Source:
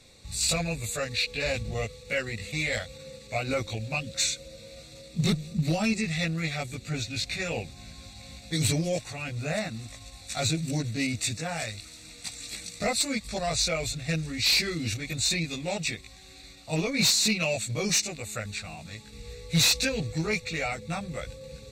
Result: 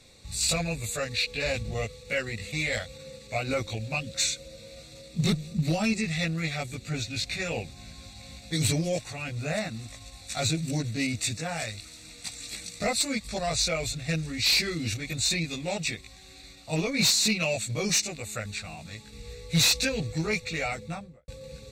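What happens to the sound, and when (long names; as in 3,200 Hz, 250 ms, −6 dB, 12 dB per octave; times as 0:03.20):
0:20.75–0:21.28: fade out and dull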